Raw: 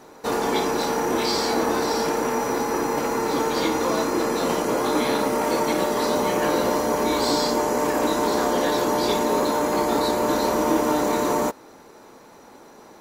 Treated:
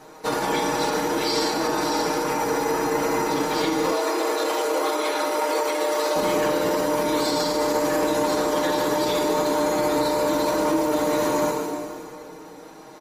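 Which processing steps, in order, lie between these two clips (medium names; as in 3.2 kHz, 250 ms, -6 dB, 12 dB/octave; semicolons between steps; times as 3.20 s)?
comb 6.4 ms, depth 74%; two-band feedback delay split 670 Hz, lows 396 ms, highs 157 ms, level -16 dB; reverberation RT60 2.2 s, pre-delay 10 ms, DRR 4.5 dB; peak limiter -12.5 dBFS, peak gain reduction 7.5 dB; 3.92–6.16 s: high-pass 350 Hz 24 dB/octave; hum notches 50/100/150/200/250/300/350/400/450/500 Hz; MP3 56 kbps 48 kHz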